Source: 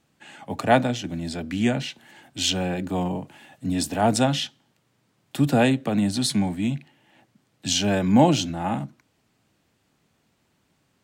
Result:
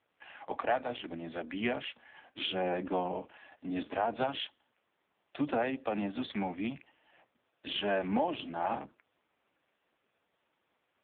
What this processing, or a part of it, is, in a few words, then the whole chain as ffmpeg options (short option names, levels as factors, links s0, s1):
voicemail: -filter_complex "[0:a]asplit=3[s0][s1][s2];[s0]afade=t=out:st=2.4:d=0.02[s3];[s1]lowshelf=f=490:g=4.5,afade=t=in:st=2.4:d=0.02,afade=t=out:st=3:d=0.02[s4];[s2]afade=t=in:st=3:d=0.02[s5];[s3][s4][s5]amix=inputs=3:normalize=0,highpass=440,lowpass=3100,acompressor=threshold=0.0501:ratio=6" -ar 8000 -c:a libopencore_amrnb -b:a 5150